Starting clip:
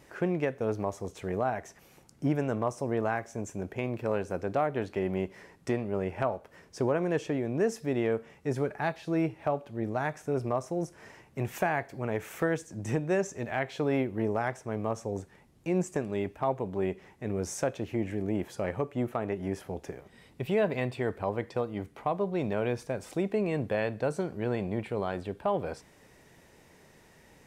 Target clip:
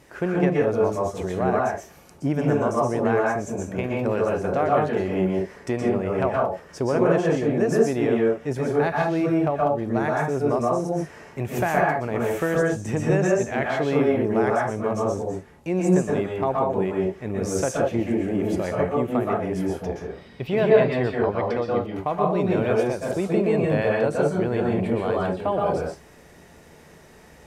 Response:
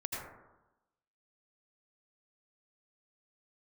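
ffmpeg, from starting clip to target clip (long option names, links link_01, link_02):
-filter_complex "[0:a]asettb=1/sr,asplit=3[link_01][link_02][link_03];[link_01]atrim=end=19.674[link_04];[link_02]atrim=start=19.67:end=21.95,asetpts=PTS-STARTPTS,afade=type=in:duration=0.004:curve=qsin,afade=type=out:start_time=2.276:duration=0.004:curve=qsin,highshelf=frequency=6400:width_type=q:width=1.5:gain=-7[link_05];[link_03]atrim=start=21.946[link_06];[link_04][link_05]acrossfade=duration=0.004:curve1=hsin:curve2=qsin[link_07];[link_07][link_06]acrossfade=duration=0.004:curve1=qsin:curve2=hsin[link_08];[1:a]atrim=start_sample=2205,atrim=end_sample=6174,asetrate=29106,aresample=44100[link_09];[link_08][link_09]afir=irnorm=-1:irlink=0,volume=4.5dB"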